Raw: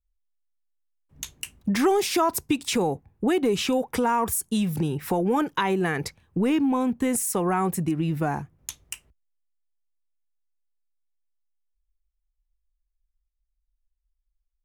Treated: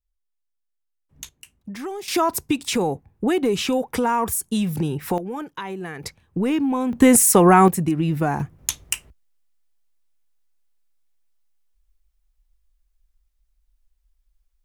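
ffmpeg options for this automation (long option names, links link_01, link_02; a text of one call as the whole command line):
ffmpeg -i in.wav -af "asetnsamples=nb_out_samples=441:pad=0,asendcmd='1.29 volume volume -10.5dB;2.08 volume volume 2dB;5.18 volume volume -7.5dB;6.03 volume volume 1dB;6.93 volume volume 11.5dB;7.68 volume volume 4dB;8.4 volume volume 11dB',volume=-2dB" out.wav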